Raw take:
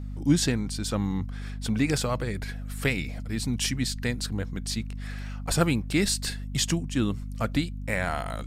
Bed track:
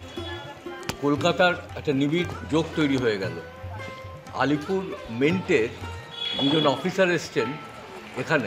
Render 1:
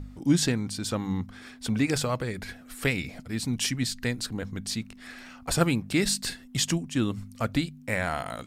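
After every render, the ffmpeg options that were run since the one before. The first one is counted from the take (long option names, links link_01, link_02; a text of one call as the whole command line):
ffmpeg -i in.wav -af "bandreject=frequency=50:width_type=h:width=4,bandreject=frequency=100:width_type=h:width=4,bandreject=frequency=150:width_type=h:width=4,bandreject=frequency=200:width_type=h:width=4" out.wav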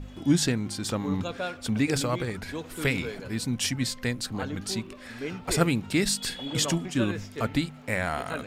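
ffmpeg -i in.wav -i bed.wav -filter_complex "[1:a]volume=-13dB[link_01];[0:a][link_01]amix=inputs=2:normalize=0" out.wav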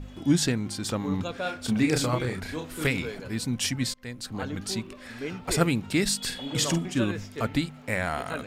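ffmpeg -i in.wav -filter_complex "[0:a]asettb=1/sr,asplit=3[link_01][link_02][link_03];[link_01]atrim=end=1.424[link_04];[link_02]atrim=start=1.42:end=2.87,asetpts=PTS-STARTPTS,afade=type=in:duration=0.004:curve=qsin,afade=type=out:start_time=1.446:duration=0.004:curve=qsin,asplit=2[link_05][link_06];[link_06]adelay=32,volume=-4.5dB[link_07];[link_05][link_07]amix=inputs=2:normalize=0,atrim=end_sample=63945[link_08];[link_03]atrim=start=2.866[link_09];[link_04][link_08]acrossfade=duration=0.004:curve1=hsin:curve2=qsin[link_10];[link_10][link_09]acrossfade=duration=0.004:curve1=qsin:curve2=hsin,asettb=1/sr,asplit=3[link_11][link_12][link_13];[link_11]atrim=end=6.224[link_14];[link_12]atrim=start=6.22:end=7,asetpts=PTS-STARTPTS,afade=type=in:duration=0.004:curve=qsin,afade=type=out:start_time=0.776:duration=0.004:curve=qsin,asplit=2[link_15][link_16];[link_16]adelay=48,volume=-10dB[link_17];[link_15][link_17]amix=inputs=2:normalize=0,atrim=end_sample=34398[link_18];[link_13]atrim=start=6.996[link_19];[link_14][link_18]acrossfade=duration=0.004:curve1=hsin:curve2=qsin[link_20];[link_20][link_19]acrossfade=duration=0.004:curve1=qsin:curve2=hsin,asplit=2[link_21][link_22];[link_21]atrim=end=3.94,asetpts=PTS-STARTPTS,afade=type=out:start_time=3.936:duration=0.004:curve=hsin:silence=0.0794328[link_23];[link_22]atrim=start=3.94,asetpts=PTS-STARTPTS,afade=type=in:duration=0.52:silence=0.0794328[link_24];[link_23][link_24]concat=n=2:v=0:a=1" out.wav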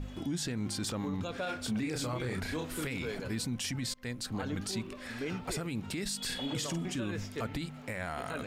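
ffmpeg -i in.wav -af "acompressor=threshold=-27dB:ratio=6,alimiter=level_in=2.5dB:limit=-24dB:level=0:latency=1:release=25,volume=-2.5dB" out.wav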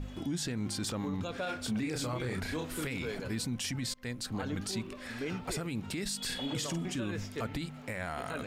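ffmpeg -i in.wav -af anull out.wav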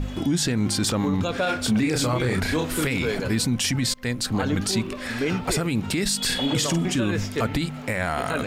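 ffmpeg -i in.wav -af "volume=12dB" out.wav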